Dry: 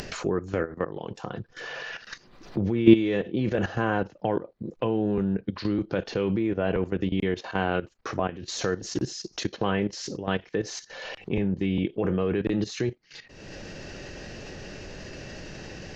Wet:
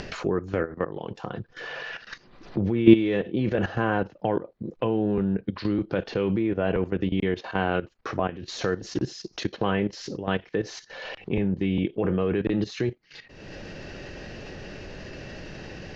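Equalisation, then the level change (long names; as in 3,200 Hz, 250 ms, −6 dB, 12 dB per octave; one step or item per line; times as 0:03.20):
low-pass filter 4,500 Hz 12 dB per octave
+1.0 dB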